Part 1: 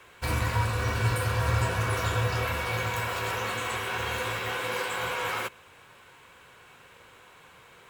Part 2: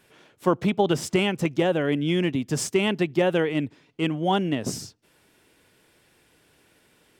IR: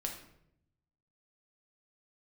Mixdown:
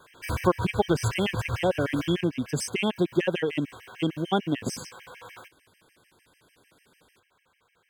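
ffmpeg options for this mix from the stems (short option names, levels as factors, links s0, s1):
-filter_complex "[0:a]afade=t=out:st=1.99:d=0.31:silence=0.237137[s0];[1:a]volume=1,asplit=2[s1][s2];[s2]apad=whole_len=348379[s3];[s0][s3]sidechaincompress=threshold=0.0501:ratio=8:attack=16:release=170[s4];[s4][s1]amix=inputs=2:normalize=0,afftfilt=real='re*gt(sin(2*PI*6.7*pts/sr)*(1-2*mod(floor(b*sr/1024/1600),2)),0)':imag='im*gt(sin(2*PI*6.7*pts/sr)*(1-2*mod(floor(b*sr/1024/1600),2)),0)':win_size=1024:overlap=0.75"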